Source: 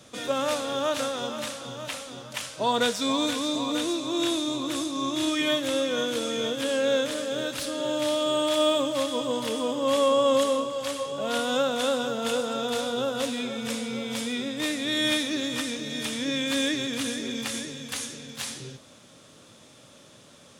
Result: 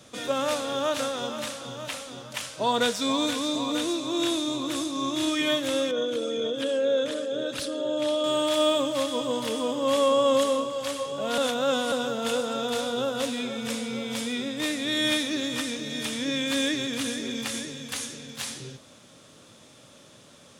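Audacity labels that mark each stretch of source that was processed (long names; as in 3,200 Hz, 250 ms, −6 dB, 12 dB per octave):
5.910000	8.240000	spectral envelope exaggerated exponent 1.5
11.380000	11.920000	reverse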